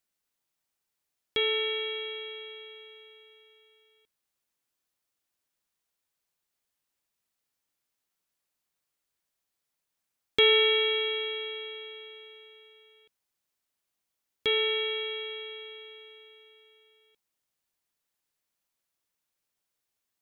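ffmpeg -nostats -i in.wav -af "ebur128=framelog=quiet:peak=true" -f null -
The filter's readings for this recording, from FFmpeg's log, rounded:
Integrated loudness:
  I:         -27.0 LUFS
  Threshold: -40.1 LUFS
Loudness range:
  LRA:        16.7 LU
  Threshold: -52.0 LUFS
  LRA low:   -43.8 LUFS
  LRA high:  -27.1 LUFS
True peak:
  Peak:      -10.2 dBFS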